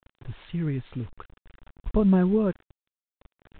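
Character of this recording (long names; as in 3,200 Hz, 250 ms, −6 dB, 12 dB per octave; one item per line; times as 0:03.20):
tremolo triangle 0.6 Hz, depth 50%
a quantiser's noise floor 8 bits, dither none
mu-law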